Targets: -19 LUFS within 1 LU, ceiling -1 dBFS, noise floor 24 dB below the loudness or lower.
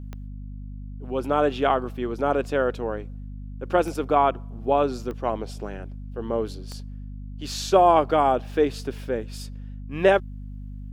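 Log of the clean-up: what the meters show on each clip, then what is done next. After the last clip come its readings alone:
clicks found 4; hum 50 Hz; highest harmonic 250 Hz; hum level -34 dBFS; loudness -24.0 LUFS; peak level -4.5 dBFS; loudness target -19.0 LUFS
-> de-click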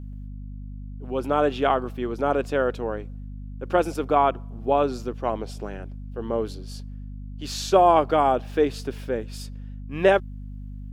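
clicks found 0; hum 50 Hz; highest harmonic 250 Hz; hum level -34 dBFS
-> hum notches 50/100/150/200/250 Hz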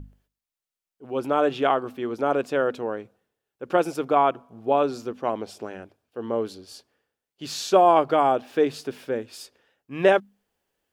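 hum not found; loudness -24.0 LUFS; peak level -4.5 dBFS; loudness target -19.0 LUFS
-> trim +5 dB; peak limiter -1 dBFS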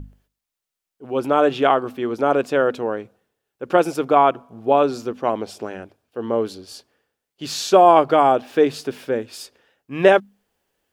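loudness -19.0 LUFS; peak level -1.0 dBFS; noise floor -84 dBFS

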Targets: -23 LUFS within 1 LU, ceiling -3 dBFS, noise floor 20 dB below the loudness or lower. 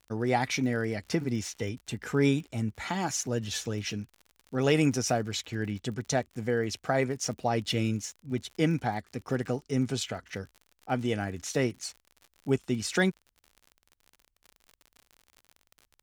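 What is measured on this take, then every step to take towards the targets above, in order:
tick rate 53 per s; loudness -30.5 LUFS; peak level -11.0 dBFS; loudness target -23.0 LUFS
-> de-click; trim +7.5 dB

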